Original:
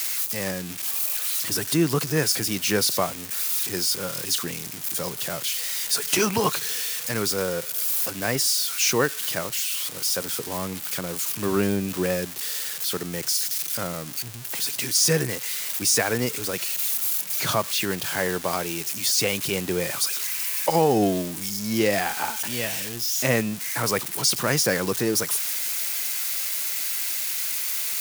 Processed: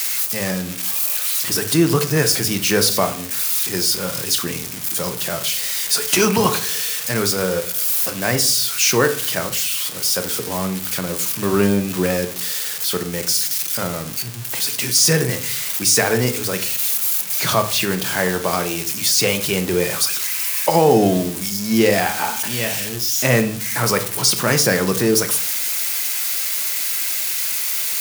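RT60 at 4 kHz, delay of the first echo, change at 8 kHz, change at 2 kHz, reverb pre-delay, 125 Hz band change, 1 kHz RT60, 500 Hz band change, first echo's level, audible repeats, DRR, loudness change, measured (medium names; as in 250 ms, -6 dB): 0.35 s, no echo, +5.5 dB, +5.5 dB, 5 ms, +7.0 dB, 0.45 s, +6.0 dB, no echo, no echo, 7.0 dB, +5.5 dB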